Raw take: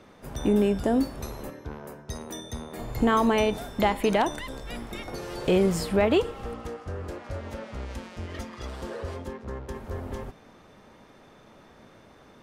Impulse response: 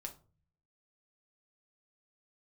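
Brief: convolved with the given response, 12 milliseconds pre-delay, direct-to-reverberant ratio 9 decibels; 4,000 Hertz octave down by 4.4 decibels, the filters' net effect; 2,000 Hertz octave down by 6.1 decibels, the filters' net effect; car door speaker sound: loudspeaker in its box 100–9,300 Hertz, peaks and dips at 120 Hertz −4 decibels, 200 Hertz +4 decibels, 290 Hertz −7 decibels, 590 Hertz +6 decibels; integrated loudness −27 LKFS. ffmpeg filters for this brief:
-filter_complex "[0:a]equalizer=frequency=2000:width_type=o:gain=-7,equalizer=frequency=4000:width_type=o:gain=-3,asplit=2[link_01][link_02];[1:a]atrim=start_sample=2205,adelay=12[link_03];[link_02][link_03]afir=irnorm=-1:irlink=0,volume=-5.5dB[link_04];[link_01][link_04]amix=inputs=2:normalize=0,highpass=100,equalizer=frequency=120:width_type=q:width=4:gain=-4,equalizer=frequency=200:width_type=q:width=4:gain=4,equalizer=frequency=290:width_type=q:width=4:gain=-7,equalizer=frequency=590:width_type=q:width=4:gain=6,lowpass=frequency=9300:width=0.5412,lowpass=frequency=9300:width=1.3066,volume=0.5dB"

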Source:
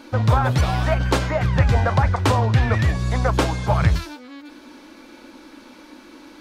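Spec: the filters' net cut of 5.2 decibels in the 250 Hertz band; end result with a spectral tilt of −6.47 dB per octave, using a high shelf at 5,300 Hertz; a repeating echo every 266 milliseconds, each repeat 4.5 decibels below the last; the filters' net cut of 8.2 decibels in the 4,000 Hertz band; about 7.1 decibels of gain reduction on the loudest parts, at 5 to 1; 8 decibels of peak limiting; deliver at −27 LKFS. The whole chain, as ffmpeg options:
ffmpeg -i in.wav -af "equalizer=frequency=250:width_type=o:gain=-8.5,equalizer=frequency=4000:width_type=o:gain=-8,highshelf=frequency=5300:gain=-7,acompressor=threshold=-21dB:ratio=5,alimiter=limit=-18.5dB:level=0:latency=1,aecho=1:1:266|532|798|1064|1330|1596|1862|2128|2394:0.596|0.357|0.214|0.129|0.0772|0.0463|0.0278|0.0167|0.01,volume=-0.5dB" out.wav

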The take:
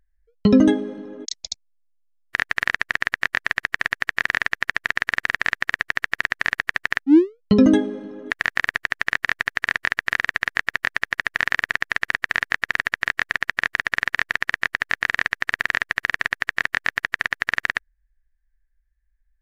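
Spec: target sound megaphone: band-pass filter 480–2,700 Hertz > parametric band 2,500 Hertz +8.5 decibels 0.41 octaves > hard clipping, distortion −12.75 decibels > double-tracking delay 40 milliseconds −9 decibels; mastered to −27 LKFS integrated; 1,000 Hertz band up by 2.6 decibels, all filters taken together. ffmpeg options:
ffmpeg -i in.wav -filter_complex "[0:a]highpass=480,lowpass=2700,equalizer=frequency=1000:width_type=o:gain=3.5,equalizer=frequency=2500:width_type=o:width=0.41:gain=8.5,asoftclip=type=hard:threshold=-6dB,asplit=2[link_01][link_02];[link_02]adelay=40,volume=-9dB[link_03];[link_01][link_03]amix=inputs=2:normalize=0,volume=-5dB" out.wav

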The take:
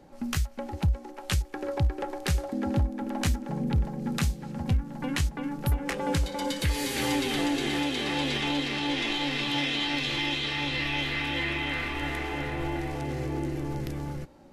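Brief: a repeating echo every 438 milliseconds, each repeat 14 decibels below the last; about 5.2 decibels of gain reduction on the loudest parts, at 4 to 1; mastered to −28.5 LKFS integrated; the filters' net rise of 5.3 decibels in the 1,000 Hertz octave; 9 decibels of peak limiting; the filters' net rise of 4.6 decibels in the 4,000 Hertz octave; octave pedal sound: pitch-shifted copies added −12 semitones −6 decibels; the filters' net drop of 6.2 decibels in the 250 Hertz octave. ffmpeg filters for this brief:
ffmpeg -i in.wav -filter_complex "[0:a]equalizer=frequency=250:width_type=o:gain=-8.5,equalizer=frequency=1000:width_type=o:gain=7,equalizer=frequency=4000:width_type=o:gain=5.5,acompressor=threshold=-27dB:ratio=4,alimiter=limit=-22dB:level=0:latency=1,aecho=1:1:438|876:0.2|0.0399,asplit=2[link_01][link_02];[link_02]asetrate=22050,aresample=44100,atempo=2,volume=-6dB[link_03];[link_01][link_03]amix=inputs=2:normalize=0,volume=2.5dB" out.wav

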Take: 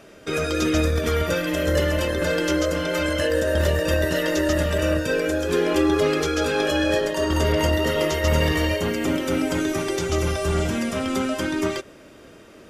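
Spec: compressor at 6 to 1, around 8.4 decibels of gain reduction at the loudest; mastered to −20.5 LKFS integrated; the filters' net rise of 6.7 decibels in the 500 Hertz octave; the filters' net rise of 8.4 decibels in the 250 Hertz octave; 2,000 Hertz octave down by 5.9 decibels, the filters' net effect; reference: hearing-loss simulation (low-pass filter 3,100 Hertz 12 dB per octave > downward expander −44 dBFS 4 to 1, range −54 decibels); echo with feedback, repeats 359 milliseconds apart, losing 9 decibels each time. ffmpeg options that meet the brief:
ffmpeg -i in.wav -af "equalizer=frequency=250:width_type=o:gain=9,equalizer=frequency=500:width_type=o:gain=6,equalizer=frequency=2000:width_type=o:gain=-7.5,acompressor=threshold=-18dB:ratio=6,lowpass=3100,aecho=1:1:359|718|1077|1436:0.355|0.124|0.0435|0.0152,agate=range=-54dB:threshold=-44dB:ratio=4,volume=1dB" out.wav

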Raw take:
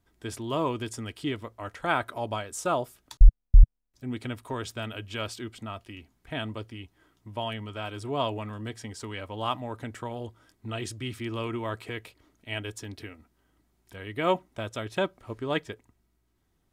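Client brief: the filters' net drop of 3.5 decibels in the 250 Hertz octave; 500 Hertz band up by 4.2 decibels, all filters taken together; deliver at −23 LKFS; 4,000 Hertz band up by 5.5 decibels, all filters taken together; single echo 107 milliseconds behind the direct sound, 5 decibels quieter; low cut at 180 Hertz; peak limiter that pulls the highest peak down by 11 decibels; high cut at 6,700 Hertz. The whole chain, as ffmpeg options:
ffmpeg -i in.wav -af "highpass=180,lowpass=6700,equalizer=frequency=250:width_type=o:gain=-7,equalizer=frequency=500:width_type=o:gain=7,equalizer=frequency=4000:width_type=o:gain=8,alimiter=limit=-19dB:level=0:latency=1,aecho=1:1:107:0.562,volume=10dB" out.wav

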